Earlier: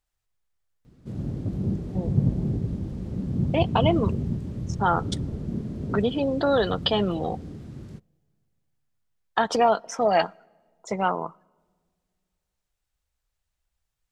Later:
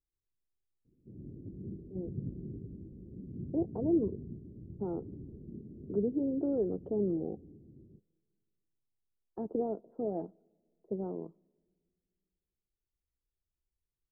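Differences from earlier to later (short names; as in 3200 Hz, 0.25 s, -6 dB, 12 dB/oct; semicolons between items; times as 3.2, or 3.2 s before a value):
background -9.0 dB; master: add ladder low-pass 430 Hz, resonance 50%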